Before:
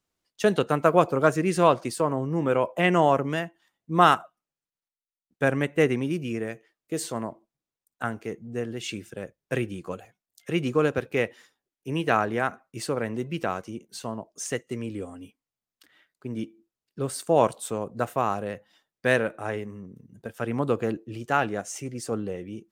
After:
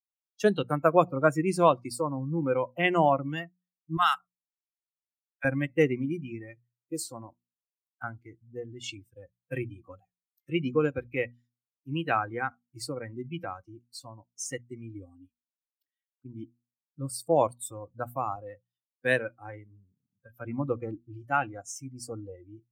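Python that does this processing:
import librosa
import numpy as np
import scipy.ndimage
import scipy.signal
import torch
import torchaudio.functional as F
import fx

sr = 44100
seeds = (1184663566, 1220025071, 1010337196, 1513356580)

y = fx.bessel_highpass(x, sr, hz=1200.0, order=8, at=(3.97, 5.45))
y = fx.highpass(y, sr, hz=95.0, slope=12, at=(18.36, 20.47))
y = fx.bin_expand(y, sr, power=1.5)
y = fx.noise_reduce_blind(y, sr, reduce_db=17)
y = fx.hum_notches(y, sr, base_hz=60, count=4)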